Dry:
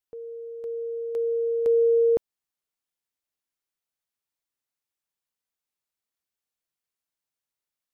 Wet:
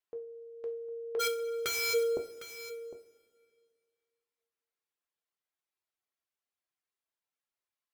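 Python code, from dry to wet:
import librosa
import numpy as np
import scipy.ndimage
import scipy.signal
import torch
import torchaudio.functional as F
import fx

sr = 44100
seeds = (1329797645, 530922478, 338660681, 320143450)

p1 = fx.dereverb_blind(x, sr, rt60_s=1.2)
p2 = fx.env_lowpass_down(p1, sr, base_hz=620.0, full_db=-27.0)
p3 = fx.bass_treble(p2, sr, bass_db=-10, treble_db=-8)
p4 = fx.overflow_wrap(p3, sr, gain_db=27.0, at=(1.19, 1.93), fade=0.02)
p5 = p4 + fx.echo_single(p4, sr, ms=756, db=-14.0, dry=0)
y = fx.rev_double_slope(p5, sr, seeds[0], early_s=0.33, late_s=2.2, knee_db=-18, drr_db=4.0)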